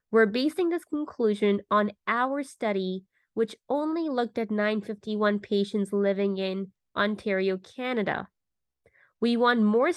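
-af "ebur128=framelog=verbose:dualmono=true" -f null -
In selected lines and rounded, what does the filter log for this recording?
Integrated loudness:
  I:         -24.2 LUFS
  Threshold: -34.5 LUFS
Loudness range:
  LRA:         2.3 LU
  Threshold: -45.3 LUFS
  LRA low:   -26.4 LUFS
  LRA high:  -24.1 LUFS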